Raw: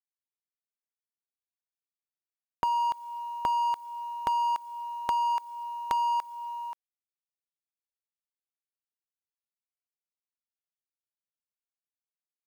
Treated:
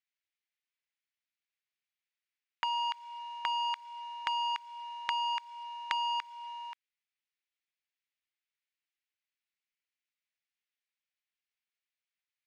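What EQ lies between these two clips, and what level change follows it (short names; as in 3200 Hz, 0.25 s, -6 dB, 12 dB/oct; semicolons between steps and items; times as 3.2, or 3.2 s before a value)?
resonant high-pass 2100 Hz, resonance Q 1.9; air absorption 140 m; +6.5 dB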